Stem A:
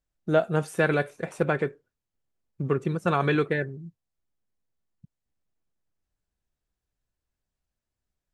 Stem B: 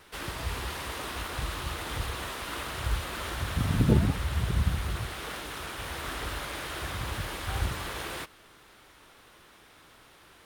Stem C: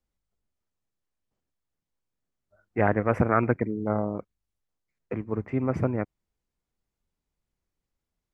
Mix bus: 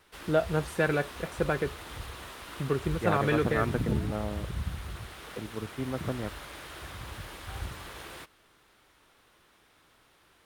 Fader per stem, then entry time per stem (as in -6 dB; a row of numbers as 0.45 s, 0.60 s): -3.5 dB, -7.5 dB, -7.5 dB; 0.00 s, 0.00 s, 0.25 s